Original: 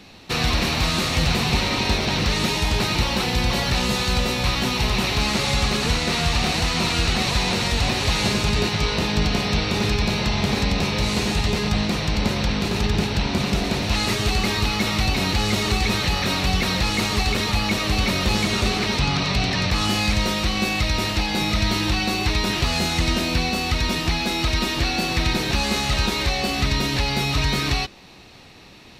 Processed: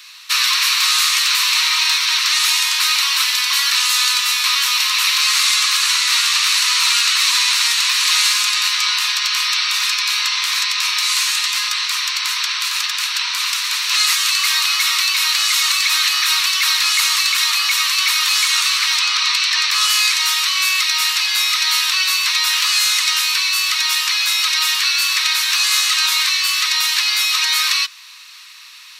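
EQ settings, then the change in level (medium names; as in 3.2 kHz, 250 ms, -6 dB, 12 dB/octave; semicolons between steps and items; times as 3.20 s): steep high-pass 990 Hz 96 dB/octave; treble shelf 4.4 kHz +11.5 dB; +5.0 dB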